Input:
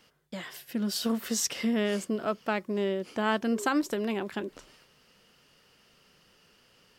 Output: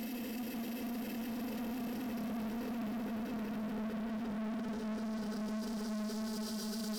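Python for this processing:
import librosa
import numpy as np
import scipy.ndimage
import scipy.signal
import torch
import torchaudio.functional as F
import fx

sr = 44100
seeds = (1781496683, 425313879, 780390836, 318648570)

p1 = fx.doppler_pass(x, sr, speed_mps=9, closest_m=1.7, pass_at_s=2.36)
p2 = fx.dereverb_blind(p1, sr, rt60_s=2.0)
p3 = fx.level_steps(p2, sr, step_db=23)
p4 = p2 + (p3 * 10.0 ** (-3.0 / 20.0))
p5 = fx.paulstretch(p4, sr, seeds[0], factor=42.0, window_s=0.25, from_s=0.68)
p6 = fx.leveller(p5, sr, passes=5)
y = p6 * 10.0 ** (1.0 / 20.0)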